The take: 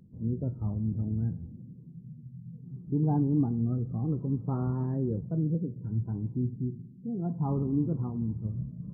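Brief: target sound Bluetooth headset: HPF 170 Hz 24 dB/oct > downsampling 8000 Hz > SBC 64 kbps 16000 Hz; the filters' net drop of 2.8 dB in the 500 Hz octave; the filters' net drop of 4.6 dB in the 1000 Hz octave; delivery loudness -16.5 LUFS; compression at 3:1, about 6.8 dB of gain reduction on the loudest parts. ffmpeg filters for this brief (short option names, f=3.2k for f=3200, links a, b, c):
-af "equalizer=f=500:t=o:g=-3,equalizer=f=1k:t=o:g=-5,acompressor=threshold=-32dB:ratio=3,highpass=f=170:w=0.5412,highpass=f=170:w=1.3066,aresample=8000,aresample=44100,volume=23.5dB" -ar 16000 -c:a sbc -b:a 64k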